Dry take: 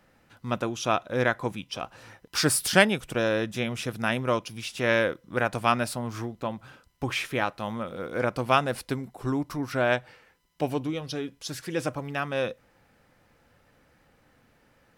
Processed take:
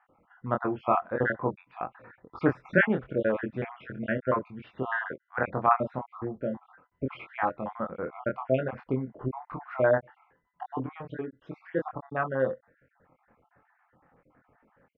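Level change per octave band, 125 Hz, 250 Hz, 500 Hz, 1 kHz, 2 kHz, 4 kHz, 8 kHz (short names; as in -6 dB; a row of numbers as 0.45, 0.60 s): -3.0 dB, -2.5 dB, -1.0 dB, -1.0 dB, -3.5 dB, under -20 dB, under -40 dB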